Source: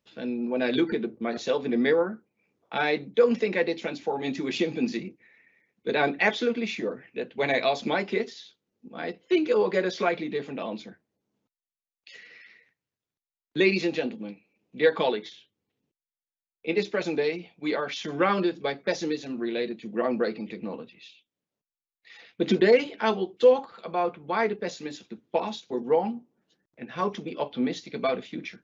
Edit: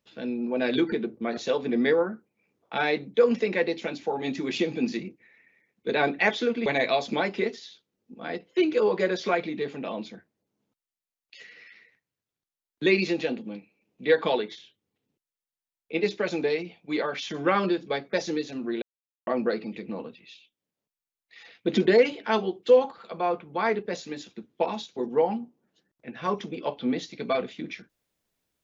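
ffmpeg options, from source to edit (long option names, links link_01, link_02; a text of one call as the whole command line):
ffmpeg -i in.wav -filter_complex "[0:a]asplit=4[link_01][link_02][link_03][link_04];[link_01]atrim=end=6.662[link_05];[link_02]atrim=start=7.398:end=19.56,asetpts=PTS-STARTPTS,afade=type=out:start_time=12.158:duration=0.004:curve=hsin[link_06];[link_03]atrim=start=19.56:end=20.01,asetpts=PTS-STARTPTS,volume=0[link_07];[link_04]atrim=start=20.01,asetpts=PTS-STARTPTS,afade=type=in:duration=0.004:curve=hsin[link_08];[link_06][link_07][link_08]concat=n=3:v=0:a=1[link_09];[link_05][link_09]acrossfade=duration=0.004:curve1=hsin:curve2=hsin" out.wav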